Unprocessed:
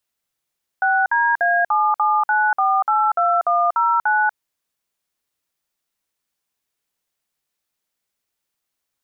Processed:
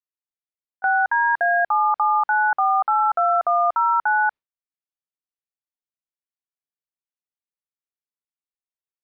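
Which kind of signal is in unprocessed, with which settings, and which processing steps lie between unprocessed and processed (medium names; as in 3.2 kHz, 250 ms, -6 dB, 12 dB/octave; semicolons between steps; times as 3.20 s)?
DTMF "6DA779482109", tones 240 ms, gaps 54 ms, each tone -17 dBFS
gate with hold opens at -11 dBFS; distance through air 260 m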